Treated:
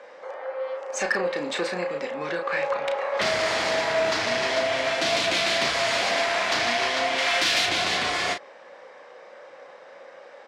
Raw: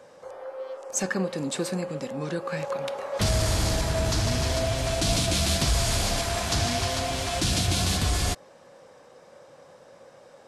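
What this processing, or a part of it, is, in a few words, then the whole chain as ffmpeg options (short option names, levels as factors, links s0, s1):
intercom: -filter_complex "[0:a]asettb=1/sr,asplit=3[s0][s1][s2];[s0]atrim=end=7.184[s3];[s1]atrim=start=7.18:end=7.66,asetpts=PTS-STARTPTS,afade=t=in:d=0.004:c=qsin,afade=t=out:st=0.476:d=0.004:c=qsin,tiltshelf=f=700:g=-4.5[s4];[s2]atrim=start=7.656[s5];[s3][s4]acrossfade=d=0.004:c1=hsin:c2=qsin[s6];[s6][s5]acrossfade=d=0.004:c1=qsin:c2=hsin,highpass=450,lowpass=3800,equalizer=f=2000:t=o:w=0.53:g=7,asoftclip=type=tanh:threshold=0.1,asplit=2[s7][s8];[s8]adelay=34,volume=0.501[s9];[s7][s9]amix=inputs=2:normalize=0,volume=1.88"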